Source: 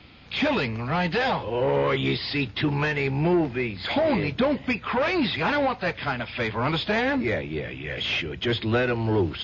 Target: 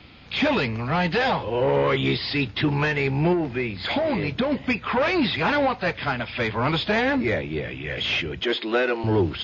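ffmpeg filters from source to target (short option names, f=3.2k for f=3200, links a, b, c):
-filter_complex "[0:a]asettb=1/sr,asplit=3[a][b][c];[a]atrim=end=3.324[d];[b]atrim=start=3.32:end=4.52,asetpts=PTS-STARTPTS,afade=t=in:d=0.004:c=qsin,afade=t=out:st=1.196:d=0.004:c=qsin,acompressor=threshold=-22dB:ratio=6[e];[c]atrim=start=4.516[f];[d][e]acrossfade=d=0.004:c1=hsin:c2=qsin[g];[g][f]acrossfade=d=0.004:c1=qsin:c2=hsin,asettb=1/sr,asplit=3[h][i][j];[h]atrim=end=8.434[k];[i]atrim=start=8.43:end=9.04,asetpts=PTS-STARTPTS,afade=t=in:d=0.004:c=qsin,afade=t=out:st=0.606:d=0.004:c=qsin,highpass=f=270:w=0.5412,highpass=f=270:w=1.3066[l];[j]atrim=start=9.036[m];[k][l]acrossfade=d=0.004:c1=hsin:c2=qsin[n];[n][m]acrossfade=d=0.004:c1=qsin:c2=hsin,volume=2dB"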